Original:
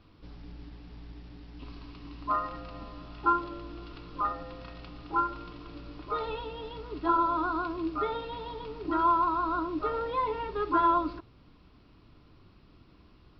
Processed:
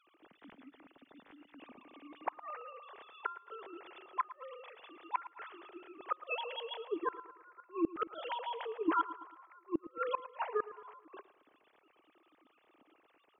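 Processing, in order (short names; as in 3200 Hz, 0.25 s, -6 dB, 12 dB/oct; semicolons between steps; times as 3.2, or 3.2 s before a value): sine-wave speech; high shelf 2000 Hz +10 dB; flipped gate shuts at -24 dBFS, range -34 dB; on a send: feedback echo 0.111 s, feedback 49%, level -16 dB; on the sum: gain +3 dB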